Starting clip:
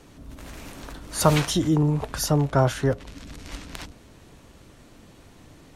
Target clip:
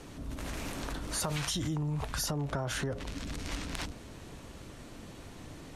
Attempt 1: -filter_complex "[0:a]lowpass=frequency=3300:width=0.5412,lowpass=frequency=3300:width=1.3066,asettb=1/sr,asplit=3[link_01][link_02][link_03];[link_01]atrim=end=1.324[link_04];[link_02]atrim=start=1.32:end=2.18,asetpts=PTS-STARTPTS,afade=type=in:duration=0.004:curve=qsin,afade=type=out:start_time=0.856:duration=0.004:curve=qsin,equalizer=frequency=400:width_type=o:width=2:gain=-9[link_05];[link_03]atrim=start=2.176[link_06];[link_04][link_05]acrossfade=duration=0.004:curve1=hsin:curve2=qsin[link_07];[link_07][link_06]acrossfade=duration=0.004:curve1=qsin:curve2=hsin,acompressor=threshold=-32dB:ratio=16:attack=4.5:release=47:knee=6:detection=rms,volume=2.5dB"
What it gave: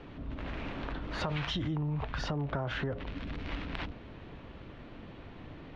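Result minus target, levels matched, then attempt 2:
8,000 Hz band −19.5 dB
-filter_complex "[0:a]lowpass=frequency=13000:width=0.5412,lowpass=frequency=13000:width=1.3066,asettb=1/sr,asplit=3[link_01][link_02][link_03];[link_01]atrim=end=1.324[link_04];[link_02]atrim=start=1.32:end=2.18,asetpts=PTS-STARTPTS,afade=type=in:duration=0.004:curve=qsin,afade=type=out:start_time=0.856:duration=0.004:curve=qsin,equalizer=frequency=400:width_type=o:width=2:gain=-9[link_05];[link_03]atrim=start=2.176[link_06];[link_04][link_05]acrossfade=duration=0.004:curve1=hsin:curve2=qsin[link_07];[link_07][link_06]acrossfade=duration=0.004:curve1=qsin:curve2=hsin,acompressor=threshold=-32dB:ratio=16:attack=4.5:release=47:knee=6:detection=rms,volume=2.5dB"

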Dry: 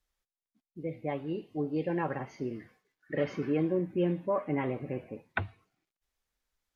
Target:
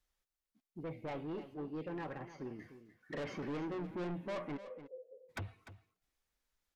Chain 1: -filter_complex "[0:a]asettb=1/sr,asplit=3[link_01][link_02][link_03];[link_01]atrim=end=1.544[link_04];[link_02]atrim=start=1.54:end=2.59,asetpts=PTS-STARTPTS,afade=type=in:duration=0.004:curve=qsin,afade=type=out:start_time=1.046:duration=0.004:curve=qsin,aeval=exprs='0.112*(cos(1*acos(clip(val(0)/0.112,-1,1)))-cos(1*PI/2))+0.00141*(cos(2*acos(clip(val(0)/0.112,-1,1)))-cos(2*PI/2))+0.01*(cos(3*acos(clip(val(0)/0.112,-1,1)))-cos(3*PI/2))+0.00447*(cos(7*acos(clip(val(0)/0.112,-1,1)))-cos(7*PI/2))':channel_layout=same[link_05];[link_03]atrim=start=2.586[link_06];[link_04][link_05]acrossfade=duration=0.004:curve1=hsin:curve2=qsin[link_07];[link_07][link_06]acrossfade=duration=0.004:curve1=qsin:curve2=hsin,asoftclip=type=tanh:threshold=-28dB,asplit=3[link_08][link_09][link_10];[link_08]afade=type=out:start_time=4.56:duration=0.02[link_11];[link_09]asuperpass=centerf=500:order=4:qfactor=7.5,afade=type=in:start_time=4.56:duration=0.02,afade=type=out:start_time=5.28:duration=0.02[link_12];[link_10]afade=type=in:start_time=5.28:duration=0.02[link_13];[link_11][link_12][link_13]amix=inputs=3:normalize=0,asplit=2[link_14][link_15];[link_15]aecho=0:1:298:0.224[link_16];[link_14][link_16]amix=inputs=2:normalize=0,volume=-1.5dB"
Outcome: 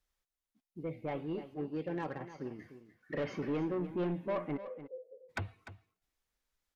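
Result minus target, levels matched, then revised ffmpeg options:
soft clipping: distortion −6 dB
-filter_complex "[0:a]asettb=1/sr,asplit=3[link_01][link_02][link_03];[link_01]atrim=end=1.544[link_04];[link_02]atrim=start=1.54:end=2.59,asetpts=PTS-STARTPTS,afade=type=in:duration=0.004:curve=qsin,afade=type=out:start_time=1.046:duration=0.004:curve=qsin,aeval=exprs='0.112*(cos(1*acos(clip(val(0)/0.112,-1,1)))-cos(1*PI/2))+0.00141*(cos(2*acos(clip(val(0)/0.112,-1,1)))-cos(2*PI/2))+0.01*(cos(3*acos(clip(val(0)/0.112,-1,1)))-cos(3*PI/2))+0.00447*(cos(7*acos(clip(val(0)/0.112,-1,1)))-cos(7*PI/2))':channel_layout=same[link_05];[link_03]atrim=start=2.586[link_06];[link_04][link_05]acrossfade=duration=0.004:curve1=hsin:curve2=qsin[link_07];[link_07][link_06]acrossfade=duration=0.004:curve1=qsin:curve2=hsin,asoftclip=type=tanh:threshold=-36dB,asplit=3[link_08][link_09][link_10];[link_08]afade=type=out:start_time=4.56:duration=0.02[link_11];[link_09]asuperpass=centerf=500:order=4:qfactor=7.5,afade=type=in:start_time=4.56:duration=0.02,afade=type=out:start_time=5.28:duration=0.02[link_12];[link_10]afade=type=in:start_time=5.28:duration=0.02[link_13];[link_11][link_12][link_13]amix=inputs=3:normalize=0,asplit=2[link_14][link_15];[link_15]aecho=0:1:298:0.224[link_16];[link_14][link_16]amix=inputs=2:normalize=0,volume=-1.5dB"

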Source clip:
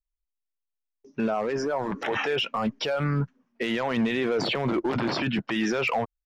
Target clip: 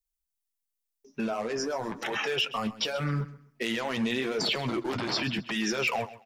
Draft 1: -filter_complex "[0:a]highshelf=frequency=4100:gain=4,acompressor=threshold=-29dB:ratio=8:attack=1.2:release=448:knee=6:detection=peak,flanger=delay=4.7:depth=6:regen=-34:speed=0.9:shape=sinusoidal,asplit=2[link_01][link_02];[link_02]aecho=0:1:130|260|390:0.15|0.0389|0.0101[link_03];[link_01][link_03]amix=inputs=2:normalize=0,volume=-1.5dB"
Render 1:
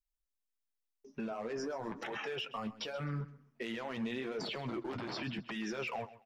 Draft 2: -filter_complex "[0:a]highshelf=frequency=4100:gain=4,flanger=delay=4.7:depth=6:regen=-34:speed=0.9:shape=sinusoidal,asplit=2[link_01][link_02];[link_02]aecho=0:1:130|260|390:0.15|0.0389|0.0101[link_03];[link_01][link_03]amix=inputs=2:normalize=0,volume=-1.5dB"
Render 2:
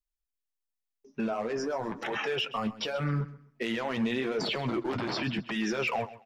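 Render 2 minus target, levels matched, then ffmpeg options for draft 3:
8,000 Hz band −6.0 dB
-filter_complex "[0:a]highshelf=frequency=4100:gain=15.5,flanger=delay=4.7:depth=6:regen=-34:speed=0.9:shape=sinusoidal,asplit=2[link_01][link_02];[link_02]aecho=0:1:130|260|390:0.15|0.0389|0.0101[link_03];[link_01][link_03]amix=inputs=2:normalize=0,volume=-1.5dB"

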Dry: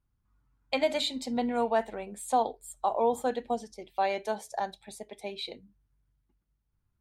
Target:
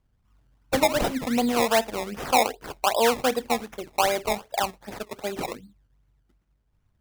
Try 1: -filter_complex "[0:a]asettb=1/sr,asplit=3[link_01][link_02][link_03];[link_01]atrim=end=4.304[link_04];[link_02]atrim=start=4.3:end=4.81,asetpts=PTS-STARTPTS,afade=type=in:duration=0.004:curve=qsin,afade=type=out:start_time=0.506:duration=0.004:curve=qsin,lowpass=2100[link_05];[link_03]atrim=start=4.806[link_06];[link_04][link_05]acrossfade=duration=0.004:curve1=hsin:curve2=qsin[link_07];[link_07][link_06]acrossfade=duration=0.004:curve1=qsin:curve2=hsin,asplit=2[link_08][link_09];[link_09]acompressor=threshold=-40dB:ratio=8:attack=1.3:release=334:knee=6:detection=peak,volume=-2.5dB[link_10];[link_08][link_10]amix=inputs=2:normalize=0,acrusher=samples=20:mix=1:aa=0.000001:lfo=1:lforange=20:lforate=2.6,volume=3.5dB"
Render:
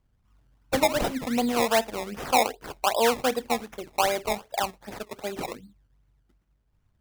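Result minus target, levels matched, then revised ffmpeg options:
downward compressor: peak gain reduction +9.5 dB
-filter_complex "[0:a]asettb=1/sr,asplit=3[link_01][link_02][link_03];[link_01]atrim=end=4.304[link_04];[link_02]atrim=start=4.3:end=4.81,asetpts=PTS-STARTPTS,afade=type=in:duration=0.004:curve=qsin,afade=type=out:start_time=0.506:duration=0.004:curve=qsin,lowpass=2100[link_05];[link_03]atrim=start=4.806[link_06];[link_04][link_05]acrossfade=duration=0.004:curve1=hsin:curve2=qsin[link_07];[link_07][link_06]acrossfade=duration=0.004:curve1=qsin:curve2=hsin,asplit=2[link_08][link_09];[link_09]acompressor=threshold=-29dB:ratio=8:attack=1.3:release=334:knee=6:detection=peak,volume=-2.5dB[link_10];[link_08][link_10]amix=inputs=2:normalize=0,acrusher=samples=20:mix=1:aa=0.000001:lfo=1:lforange=20:lforate=2.6,volume=3.5dB"

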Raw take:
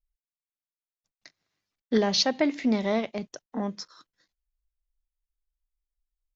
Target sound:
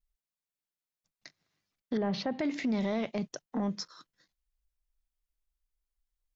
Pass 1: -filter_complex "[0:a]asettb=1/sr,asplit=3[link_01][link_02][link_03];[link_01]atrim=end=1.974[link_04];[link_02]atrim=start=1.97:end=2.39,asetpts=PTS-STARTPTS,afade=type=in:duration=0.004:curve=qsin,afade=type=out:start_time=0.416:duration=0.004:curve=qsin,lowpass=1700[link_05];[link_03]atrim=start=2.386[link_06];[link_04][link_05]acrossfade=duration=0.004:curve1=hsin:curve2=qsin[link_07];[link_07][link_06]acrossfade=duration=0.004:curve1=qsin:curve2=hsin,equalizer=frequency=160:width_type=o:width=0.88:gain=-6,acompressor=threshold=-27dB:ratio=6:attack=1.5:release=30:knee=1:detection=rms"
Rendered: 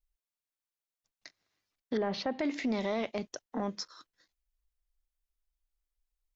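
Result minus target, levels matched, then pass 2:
125 Hz band −4.5 dB
-filter_complex "[0:a]asettb=1/sr,asplit=3[link_01][link_02][link_03];[link_01]atrim=end=1.974[link_04];[link_02]atrim=start=1.97:end=2.39,asetpts=PTS-STARTPTS,afade=type=in:duration=0.004:curve=qsin,afade=type=out:start_time=0.416:duration=0.004:curve=qsin,lowpass=1700[link_05];[link_03]atrim=start=2.386[link_06];[link_04][link_05]acrossfade=duration=0.004:curve1=hsin:curve2=qsin[link_07];[link_07][link_06]acrossfade=duration=0.004:curve1=qsin:curve2=hsin,equalizer=frequency=160:width_type=o:width=0.88:gain=5.5,acompressor=threshold=-27dB:ratio=6:attack=1.5:release=30:knee=1:detection=rms"

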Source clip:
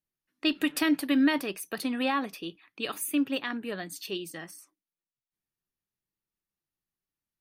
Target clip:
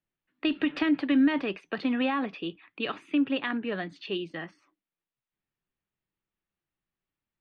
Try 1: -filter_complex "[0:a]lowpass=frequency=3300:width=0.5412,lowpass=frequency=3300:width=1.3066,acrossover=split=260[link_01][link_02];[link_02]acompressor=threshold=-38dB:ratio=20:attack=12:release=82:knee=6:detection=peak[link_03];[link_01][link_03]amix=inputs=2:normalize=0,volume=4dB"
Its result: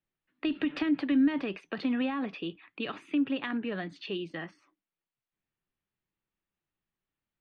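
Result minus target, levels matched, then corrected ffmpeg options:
downward compressor: peak gain reduction +7 dB
-filter_complex "[0:a]lowpass=frequency=3300:width=0.5412,lowpass=frequency=3300:width=1.3066,acrossover=split=260[link_01][link_02];[link_02]acompressor=threshold=-30.5dB:ratio=20:attack=12:release=82:knee=6:detection=peak[link_03];[link_01][link_03]amix=inputs=2:normalize=0,volume=4dB"

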